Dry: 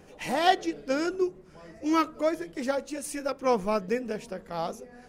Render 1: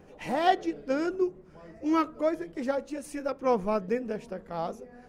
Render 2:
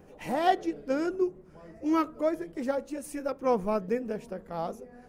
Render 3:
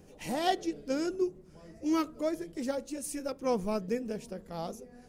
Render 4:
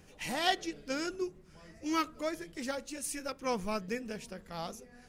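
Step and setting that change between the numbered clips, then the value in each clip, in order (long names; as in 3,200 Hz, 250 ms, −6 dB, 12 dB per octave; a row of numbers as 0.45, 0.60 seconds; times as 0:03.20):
parametric band, centre frequency: 13,000, 4,800, 1,500, 550 Hertz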